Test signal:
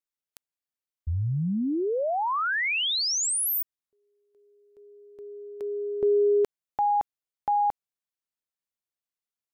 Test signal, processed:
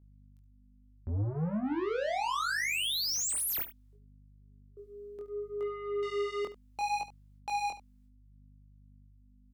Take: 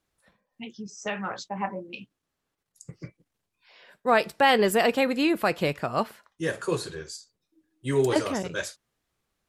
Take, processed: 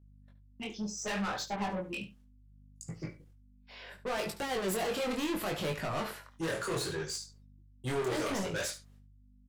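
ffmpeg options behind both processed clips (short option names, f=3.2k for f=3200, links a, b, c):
-filter_complex "[0:a]agate=range=-35dB:threshold=-57dB:ratio=16:release=378:detection=peak,equalizer=f=240:w=7.8:g=-4.5,alimiter=limit=-18.5dB:level=0:latency=1:release=15,asoftclip=type=tanh:threshold=-36dB,aeval=exprs='val(0)+0.000708*(sin(2*PI*50*n/s)+sin(2*PI*2*50*n/s)/2+sin(2*PI*3*50*n/s)/3+sin(2*PI*4*50*n/s)/4+sin(2*PI*5*50*n/s)/5)':c=same,flanger=delay=18.5:depth=5.7:speed=0.69,asplit=2[a][b];[b]aecho=0:1:72:0.2[c];[a][c]amix=inputs=2:normalize=0,volume=7.5dB"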